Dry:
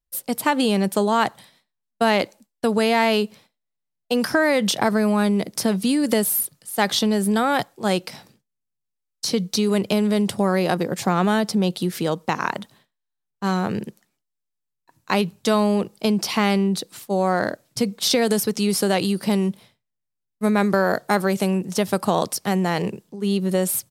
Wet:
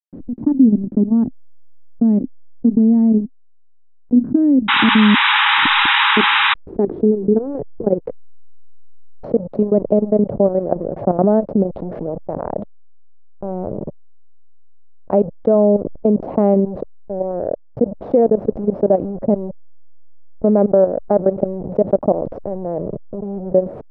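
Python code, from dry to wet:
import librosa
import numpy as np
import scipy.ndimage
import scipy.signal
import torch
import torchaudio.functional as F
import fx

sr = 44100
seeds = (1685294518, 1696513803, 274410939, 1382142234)

y = fx.level_steps(x, sr, step_db=19)
y = fx.gate_flip(y, sr, shuts_db=-20.0, range_db=-40, at=(5.14, 6.17))
y = fx.backlash(y, sr, play_db=-32.0)
y = fx.dynamic_eq(y, sr, hz=280.0, q=1.4, threshold_db=-37.0, ratio=4.0, max_db=5)
y = fx.filter_sweep_lowpass(y, sr, from_hz=260.0, to_hz=590.0, start_s=5.08, end_s=8.8, q=3.9)
y = fx.spec_paint(y, sr, seeds[0], shape='noise', start_s=4.68, length_s=1.86, low_hz=800.0, high_hz=3900.0, level_db=-14.0)
y = fx.high_shelf(y, sr, hz=3100.0, db=-11.5)
y = fx.env_flatten(y, sr, amount_pct=50)
y = y * librosa.db_to_amplitude(-3.5)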